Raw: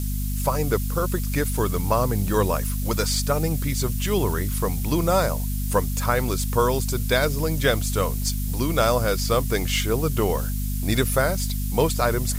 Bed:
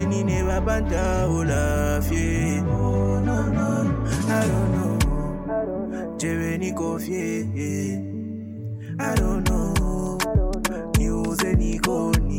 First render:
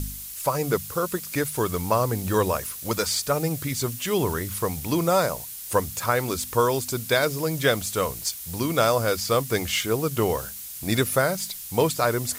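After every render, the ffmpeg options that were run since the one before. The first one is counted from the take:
-af "bandreject=f=50:t=h:w=4,bandreject=f=100:t=h:w=4,bandreject=f=150:t=h:w=4,bandreject=f=200:t=h:w=4,bandreject=f=250:t=h:w=4"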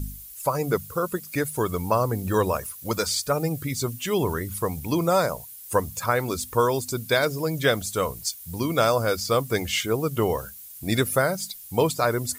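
-af "afftdn=nr=11:nf=-38"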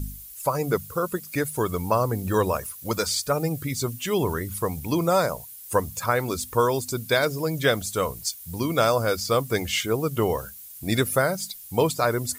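-af anull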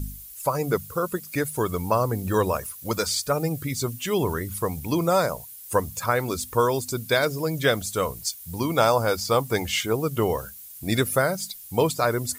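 -filter_complex "[0:a]asettb=1/sr,asplit=3[a][b][c];[a]atrim=end=8.584[d];[b]atrim=start=8.58:end=9.93,asetpts=PTS-STARTPTS,afade=t=in:d=0.004:c=qsin,afade=t=out:st=1.346:d=0.004:c=qsin,equalizer=f=860:t=o:w=0.31:g=9.5[e];[c]atrim=start=9.926[f];[d][e]acrossfade=d=0.004:c1=hsin:c2=qsin[g];[g][f]acrossfade=d=0.004:c1=qsin:c2=hsin"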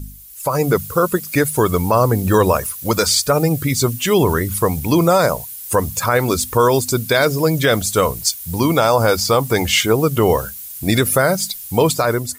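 -af "alimiter=limit=-14.5dB:level=0:latency=1:release=48,dynaudnorm=f=130:g=7:m=11dB"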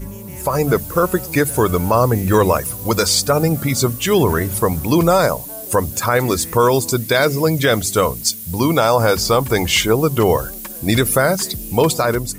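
-filter_complex "[1:a]volume=-11.5dB[a];[0:a][a]amix=inputs=2:normalize=0"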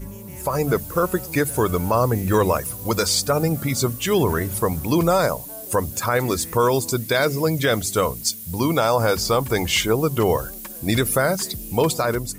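-af "volume=-4.5dB"

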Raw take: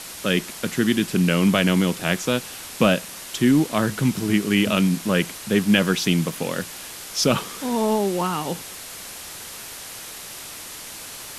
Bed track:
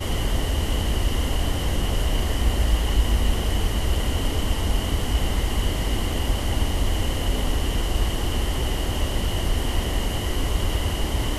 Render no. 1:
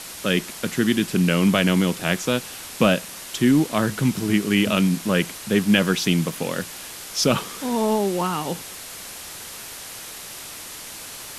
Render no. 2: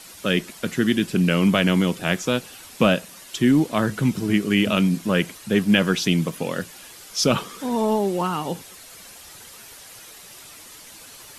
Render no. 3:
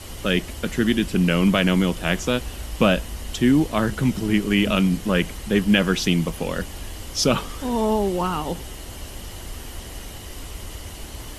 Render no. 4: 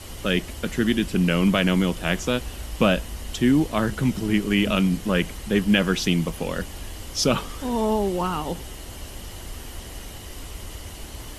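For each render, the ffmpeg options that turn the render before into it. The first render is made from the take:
-af anull
-af "afftdn=nr=9:nf=-37"
-filter_complex "[1:a]volume=-12.5dB[a];[0:a][a]amix=inputs=2:normalize=0"
-af "volume=-1.5dB"

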